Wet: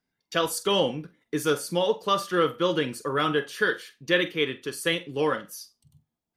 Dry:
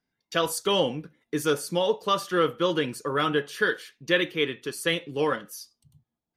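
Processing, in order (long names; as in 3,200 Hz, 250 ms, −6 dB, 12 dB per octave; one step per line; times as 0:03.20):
flutter between parallel walls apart 7.8 metres, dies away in 0.2 s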